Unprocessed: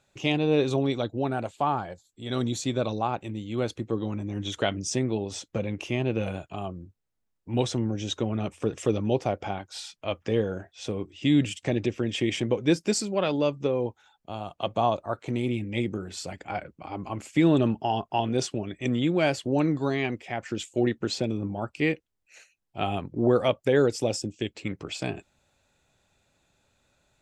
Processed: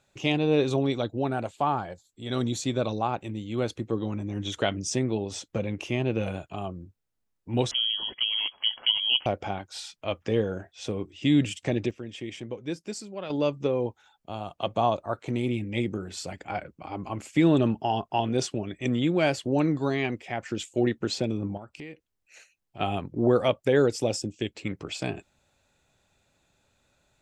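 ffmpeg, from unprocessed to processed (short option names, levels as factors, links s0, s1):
-filter_complex "[0:a]asettb=1/sr,asplit=3[s0][s1][s2];[s0]atrim=end=7.714[s3];[s1]atrim=start=7.71:end=9.26,asetpts=PTS-STARTPTS,afade=t=in:d=0.004:c=qsin,afade=t=out:st=1.546:d=0.004:c=qsin,lowpass=f=2900:t=q:w=0.5098,lowpass=f=2900:t=q:w=0.6013,lowpass=f=2900:t=q:w=0.9,lowpass=f=2900:t=q:w=2.563,afreqshift=-3400[s4];[s2]atrim=start=9.256[s5];[s3][s4]acrossfade=d=0.004:c1=hsin:c2=qsin[s6];[s6][s5]acrossfade=d=0.004:c1=qsin:c2=hsin,asettb=1/sr,asplit=3[s7][s8][s9];[s7]atrim=end=21.574[s10];[s8]atrim=start=21.57:end=22.8,asetpts=PTS-STARTPTS,afade=t=in:d=0.004:c=qsin,afade=t=out:st=1.226:d=0.004:c=qsin,acompressor=threshold=0.01:ratio=4:attack=3.2:release=140:knee=1:detection=peak[s11];[s9]atrim=start=22.796[s12];[s10][s11]acrossfade=d=0.004:c1=hsin:c2=qsin[s13];[s13][s12]acrossfade=d=0.004:c1=qsin:c2=hsin,asplit=3[s14][s15][s16];[s14]atrim=end=11.91,asetpts=PTS-STARTPTS,afade=t=out:st=11.45:d=0.46:c=log:silence=0.298538[s17];[s15]atrim=start=11.91:end=13.3,asetpts=PTS-STARTPTS,volume=0.299[s18];[s16]atrim=start=13.3,asetpts=PTS-STARTPTS,afade=t=in:d=0.46:c=log:silence=0.298538[s19];[s17][s18][s19]concat=n=3:v=0:a=1"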